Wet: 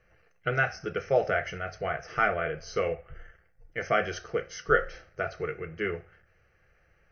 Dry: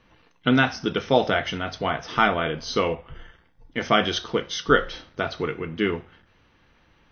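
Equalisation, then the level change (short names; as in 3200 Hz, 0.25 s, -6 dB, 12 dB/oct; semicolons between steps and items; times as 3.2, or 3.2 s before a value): fixed phaser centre 970 Hz, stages 6; -3.0 dB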